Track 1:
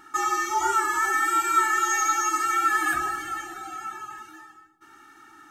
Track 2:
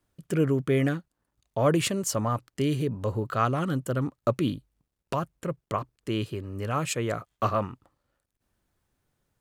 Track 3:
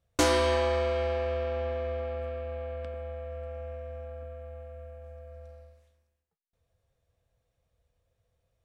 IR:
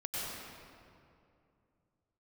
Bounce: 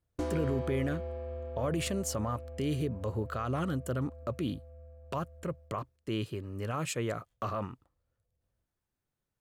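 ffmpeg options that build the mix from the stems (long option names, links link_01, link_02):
-filter_complex "[1:a]agate=range=-8dB:threshold=-49dB:ratio=16:detection=peak,volume=-4dB[link_01];[2:a]tiltshelf=frequency=840:gain=9.5,volume=-14.5dB[link_02];[link_01]alimiter=level_in=0.5dB:limit=-24dB:level=0:latency=1:release=31,volume=-0.5dB,volume=0dB[link_03];[link_02][link_03]amix=inputs=2:normalize=0"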